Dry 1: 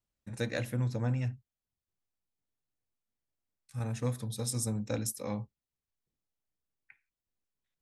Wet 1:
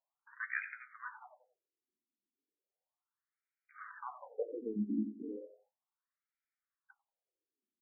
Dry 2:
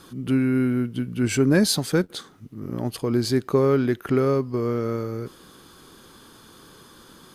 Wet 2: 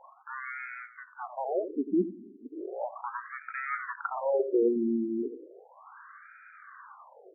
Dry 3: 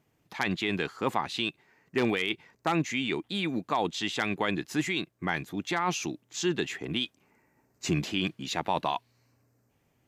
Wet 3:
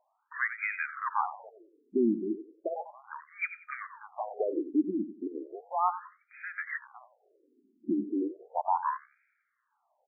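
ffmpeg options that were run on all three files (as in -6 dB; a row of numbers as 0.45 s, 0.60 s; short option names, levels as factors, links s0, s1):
-filter_complex "[0:a]aeval=exprs='(tanh(14.1*val(0)+0.15)-tanh(0.15))/14.1':c=same,asplit=2[s0][s1];[s1]adelay=91,lowpass=f=4900:p=1,volume=0.251,asplit=2[s2][s3];[s3]adelay=91,lowpass=f=4900:p=1,volume=0.29,asplit=2[s4][s5];[s5]adelay=91,lowpass=f=4900:p=1,volume=0.29[s6];[s2][s4][s6]amix=inputs=3:normalize=0[s7];[s0][s7]amix=inputs=2:normalize=0,afftfilt=real='re*between(b*sr/1024,270*pow(1800/270,0.5+0.5*sin(2*PI*0.35*pts/sr))/1.41,270*pow(1800/270,0.5+0.5*sin(2*PI*0.35*pts/sr))*1.41)':imag='im*between(b*sr/1024,270*pow(1800/270,0.5+0.5*sin(2*PI*0.35*pts/sr))/1.41,270*pow(1800/270,0.5+0.5*sin(2*PI*0.35*pts/sr))*1.41)':win_size=1024:overlap=0.75,volume=2"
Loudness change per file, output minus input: -6.5 LU, -9.0 LU, -2.5 LU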